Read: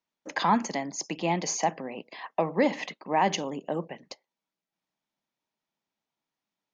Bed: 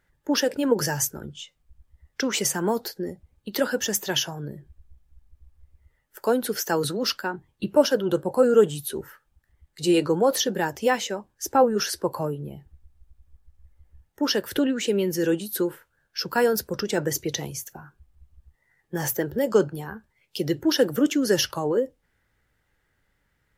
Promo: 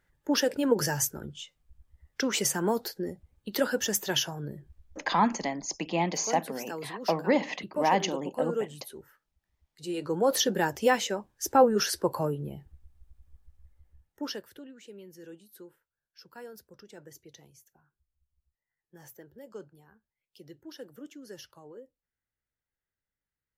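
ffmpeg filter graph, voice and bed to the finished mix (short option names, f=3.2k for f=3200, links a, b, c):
-filter_complex "[0:a]adelay=4700,volume=-0.5dB[a];[1:a]volume=9.5dB,afade=t=out:st=4.69:d=0.54:silence=0.281838,afade=t=in:st=9.97:d=0.44:silence=0.237137,afade=t=out:st=13.45:d=1.1:silence=0.0749894[b];[a][b]amix=inputs=2:normalize=0"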